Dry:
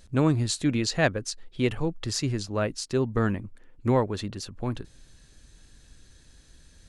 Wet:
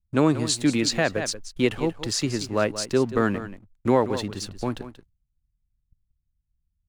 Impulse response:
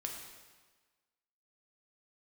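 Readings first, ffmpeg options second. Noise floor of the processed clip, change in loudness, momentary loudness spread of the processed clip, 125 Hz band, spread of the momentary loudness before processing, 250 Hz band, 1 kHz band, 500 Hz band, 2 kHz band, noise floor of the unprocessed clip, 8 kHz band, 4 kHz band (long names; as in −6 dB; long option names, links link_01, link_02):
−78 dBFS, +3.0 dB, 10 LU, −2.5 dB, 11 LU, +3.0 dB, +4.0 dB, +4.0 dB, +2.5 dB, −56 dBFS, +4.5 dB, +4.5 dB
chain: -filter_complex "[0:a]agate=range=-25dB:threshold=-44dB:ratio=16:detection=peak,acrossover=split=180[link_01][link_02];[link_01]acompressor=threshold=-41dB:ratio=6[link_03];[link_02]aeval=exprs='sgn(val(0))*max(abs(val(0))-0.00224,0)':channel_layout=same[link_04];[link_03][link_04]amix=inputs=2:normalize=0,aecho=1:1:183:0.224,alimiter=level_in=12.5dB:limit=-1dB:release=50:level=0:latency=1,volume=-7.5dB"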